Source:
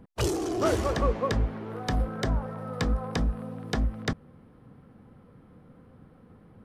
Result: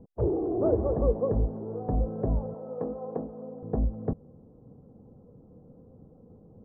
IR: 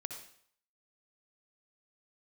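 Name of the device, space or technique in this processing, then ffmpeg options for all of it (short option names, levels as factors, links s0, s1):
under water: -filter_complex "[0:a]asettb=1/sr,asplit=3[s0][s1][s2];[s0]atrim=end=2.544[s3];[s1]atrim=start=2.54:end=3.63,asetpts=PTS-STARTPTS,afade=t=in:d=0.004:c=qsin,afade=t=out:st=1.086:d=0.004:c=qsin,highpass=280[s4];[s2]atrim=start=3.626[s5];[s3][s4]acrossfade=d=0.004:c1=hsin:c2=qsin[s6];[s6][s5]acrossfade=d=0.004:c1=qsin:c2=hsin,lowpass=f=760:w=0.5412,lowpass=f=760:w=1.3066,equalizer=f=460:t=o:w=0.42:g=4.5"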